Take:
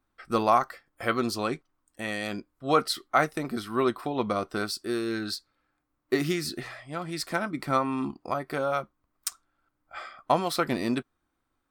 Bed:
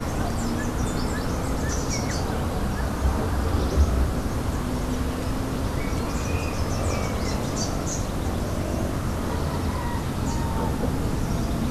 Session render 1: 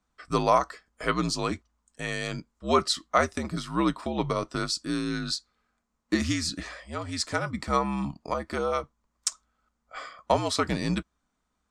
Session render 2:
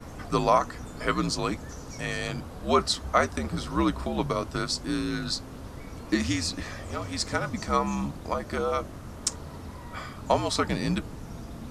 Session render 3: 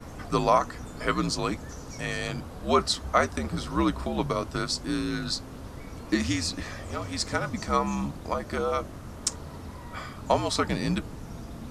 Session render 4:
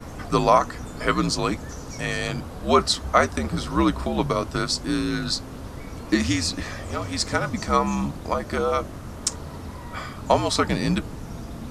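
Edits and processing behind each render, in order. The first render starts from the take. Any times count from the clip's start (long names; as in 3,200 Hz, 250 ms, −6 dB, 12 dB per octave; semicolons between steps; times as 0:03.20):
frequency shifter −67 Hz; low-pass with resonance 7,000 Hz, resonance Q 2.6
mix in bed −14.5 dB
no processing that can be heard
level +4.5 dB; brickwall limiter −2 dBFS, peak gain reduction 1.5 dB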